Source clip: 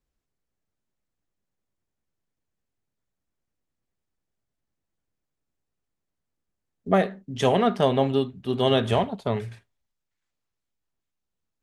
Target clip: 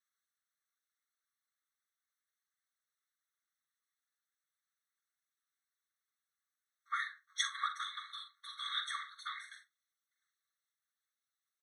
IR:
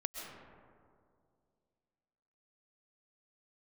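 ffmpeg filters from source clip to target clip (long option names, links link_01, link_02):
-filter_complex "[0:a]lowshelf=frequency=650:width_type=q:width=1.5:gain=7,acompressor=threshold=-17dB:ratio=6,afftfilt=real='hypot(re,im)*cos(2*PI*random(0))':imag='hypot(re,im)*sin(2*PI*random(1))':win_size=512:overlap=0.75,asplit=2[link_01][link_02];[link_02]aecho=0:1:44|57:0.335|0.158[link_03];[link_01][link_03]amix=inputs=2:normalize=0,afftfilt=real='re*eq(mod(floor(b*sr/1024/1100),2),1)':imag='im*eq(mod(floor(b*sr/1024/1100),2),1)':win_size=1024:overlap=0.75,volume=8dB"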